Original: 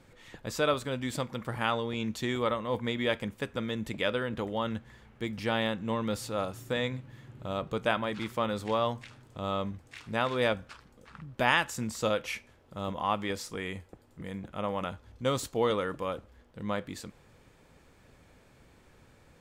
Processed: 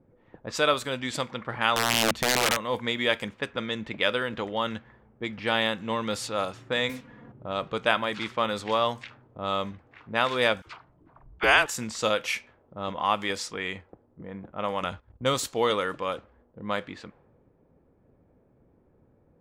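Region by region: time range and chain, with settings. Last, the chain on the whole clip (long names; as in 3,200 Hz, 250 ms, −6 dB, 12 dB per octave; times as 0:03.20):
0:01.76–0:02.57: bass and treble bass +11 dB, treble −13 dB + wrap-around overflow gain 20.5 dB
0:06.89–0:07.32: comb filter 4.2 ms + noise that follows the level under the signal 18 dB + multiband upward and downward compressor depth 70%
0:10.62–0:11.66: all-pass dispersion lows, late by 42 ms, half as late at 800 Hz + frequency shifter −190 Hz
0:14.83–0:15.34: noise gate −52 dBFS, range −12 dB + low-shelf EQ 100 Hz +11.5 dB
whole clip: spectral tilt +2.5 dB per octave; low-pass that shuts in the quiet parts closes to 390 Hz, open at −29 dBFS; high-shelf EQ 7,000 Hz −10 dB; level +5 dB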